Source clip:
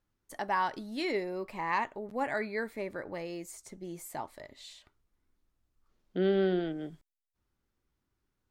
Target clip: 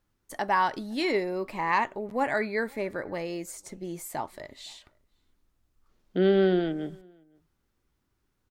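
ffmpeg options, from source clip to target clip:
ffmpeg -i in.wav -filter_complex "[0:a]asplit=2[link_01][link_02];[link_02]adelay=513.1,volume=-29dB,highshelf=frequency=4000:gain=-11.5[link_03];[link_01][link_03]amix=inputs=2:normalize=0,volume=5.5dB" out.wav

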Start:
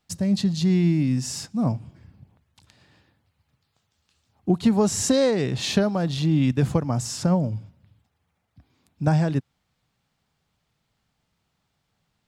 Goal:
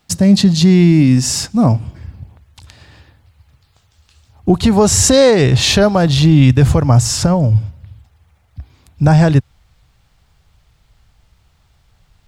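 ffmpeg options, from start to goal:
ffmpeg -i in.wav -filter_complex "[0:a]asubboost=boost=10:cutoff=64,asettb=1/sr,asplit=3[link_01][link_02][link_03];[link_01]atrim=end=6.994[link_04];[link_02]atrim=start=6.99:end=7.55,asetpts=PTS-STARTPTS,afade=type=in:duration=0.004:curve=qsin,afade=type=out:start_time=0.556:duration=0.004:curve=qsin,acompressor=threshold=-24dB:ratio=3[link_05];[link_03]atrim=start=7.546[link_06];[link_04][link_05]acrossfade=duration=0.004:curve1=hsin:curve2=qsin[link_07];[link_07][link_06]acrossfade=duration=0.004:curve1=qsin:curve2=hsin,alimiter=level_in=15dB:limit=-1dB:release=50:level=0:latency=1,volume=-1dB" out.wav

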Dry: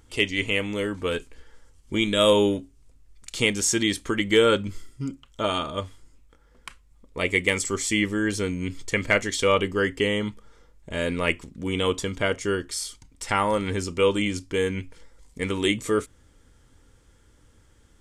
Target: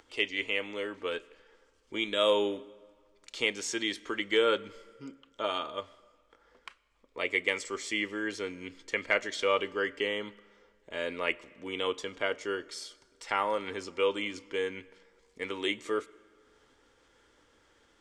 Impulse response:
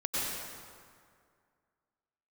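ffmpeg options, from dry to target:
-filter_complex "[0:a]acompressor=mode=upward:threshold=-41dB:ratio=2.5,acrossover=split=310 5800:gain=0.112 1 0.158[link_01][link_02][link_03];[link_01][link_02][link_03]amix=inputs=3:normalize=0,asplit=2[link_04][link_05];[1:a]atrim=start_sample=2205,asetrate=48510,aresample=44100[link_06];[link_05][link_06]afir=irnorm=-1:irlink=0,volume=-28.5dB[link_07];[link_04][link_07]amix=inputs=2:normalize=0,volume=-6dB"

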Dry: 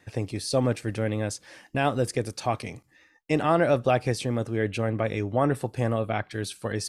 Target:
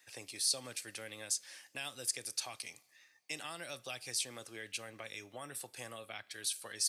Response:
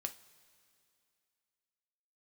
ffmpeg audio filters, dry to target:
-filter_complex "[0:a]aderivative,acrossover=split=210|3000[link_01][link_02][link_03];[link_02]acompressor=threshold=-50dB:ratio=6[link_04];[link_01][link_04][link_03]amix=inputs=3:normalize=0,asplit=2[link_05][link_06];[1:a]atrim=start_sample=2205,lowpass=6600[link_07];[link_06][link_07]afir=irnorm=-1:irlink=0,volume=-6.5dB[link_08];[link_05][link_08]amix=inputs=2:normalize=0,volume=2.5dB"

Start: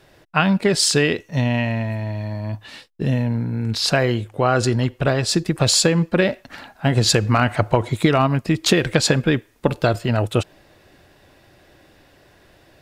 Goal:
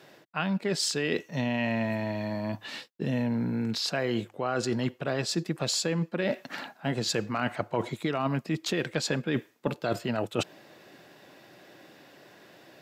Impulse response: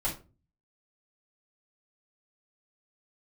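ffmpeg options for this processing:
-af "highpass=frequency=150:width=0.5412,highpass=frequency=150:width=1.3066,equalizer=frequency=9400:width=7.7:gain=-13.5,areverse,acompressor=threshold=-25dB:ratio=10,areverse"

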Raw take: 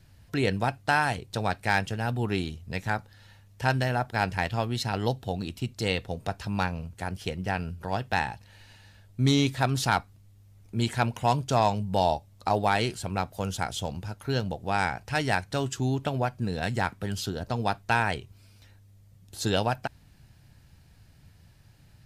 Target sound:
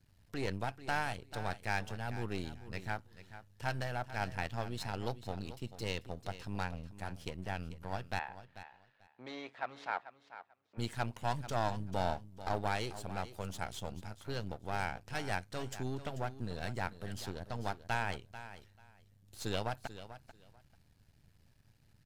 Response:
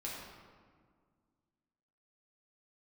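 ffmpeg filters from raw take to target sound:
-filter_complex "[0:a]aeval=exprs='if(lt(val(0),0),0.251*val(0),val(0))':channel_layout=same,asplit=3[link_01][link_02][link_03];[link_01]afade=type=out:start_time=8.18:duration=0.02[link_04];[link_02]highpass=540,lowpass=2200,afade=type=in:start_time=8.18:duration=0.02,afade=type=out:start_time=10.77:duration=0.02[link_05];[link_03]afade=type=in:start_time=10.77:duration=0.02[link_06];[link_04][link_05][link_06]amix=inputs=3:normalize=0,aecho=1:1:440|880:0.211|0.038,volume=-8dB"

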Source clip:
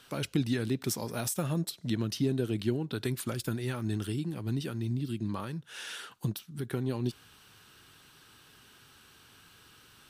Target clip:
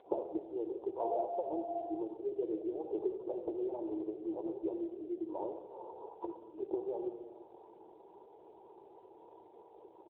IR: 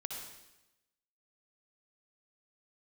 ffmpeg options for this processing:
-filter_complex "[0:a]asettb=1/sr,asplit=3[link_01][link_02][link_03];[link_01]atrim=end=1.004[link_04];[link_02]atrim=start=1:end=1.81,asetpts=PTS-STARTPTS,afade=type=in:duration=0.004:curve=qsin,afade=type=out:start_time=0.806:duration=0.004:curve=qsin,aeval=exprs='val(0)+0.0158*sin(2*PI*690*n/s)':channel_layout=same[link_05];[link_03]atrim=start=1.806[link_06];[link_04][link_05]acrossfade=duration=0.004:curve1=hsin:curve2=qsin[link_07];[link_07][link_06]acrossfade=duration=0.004:curve1=qsin:curve2=hsin,acompressor=threshold=-40dB:ratio=8,asplit=4[link_08][link_09][link_10][link_11];[link_09]adelay=176,afreqshift=110,volume=-19.5dB[link_12];[link_10]adelay=352,afreqshift=220,volume=-27.2dB[link_13];[link_11]adelay=528,afreqshift=330,volume=-35dB[link_14];[link_08][link_12][link_13][link_14]amix=inputs=4:normalize=0,flanger=delay=1.5:depth=9.9:regen=-37:speed=0.72:shape=sinusoidal,asplit=2[link_15][link_16];[1:a]atrim=start_sample=2205,afade=type=out:start_time=0.42:duration=0.01,atrim=end_sample=18963[link_17];[link_16][link_17]afir=irnorm=-1:irlink=0,volume=1.5dB[link_18];[link_15][link_18]amix=inputs=2:normalize=0,afftfilt=real='re*between(b*sr/4096,310,1000)':imag='im*between(b*sr/4096,310,1000)':win_size=4096:overlap=0.75,volume=11.5dB" -ar 8000 -c:a libopencore_amrnb -b:a 7400

